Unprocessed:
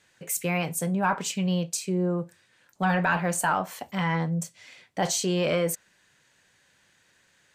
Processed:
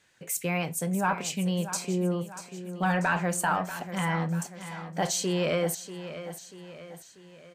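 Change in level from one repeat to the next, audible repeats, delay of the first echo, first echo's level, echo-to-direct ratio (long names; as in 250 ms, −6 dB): −6.0 dB, 4, 639 ms, −12.0 dB, −11.0 dB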